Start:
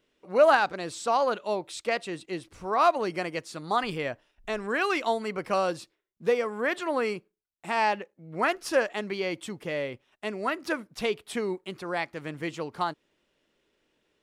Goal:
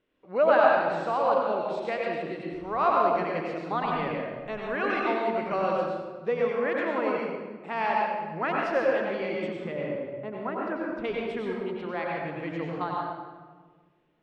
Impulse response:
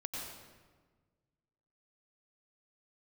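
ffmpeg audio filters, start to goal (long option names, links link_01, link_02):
-filter_complex "[0:a]asetnsamples=nb_out_samples=441:pad=0,asendcmd='9.72 lowpass f 1300;11.04 lowpass f 2500',lowpass=2600[link_01];[1:a]atrim=start_sample=2205[link_02];[link_01][link_02]afir=irnorm=-1:irlink=0"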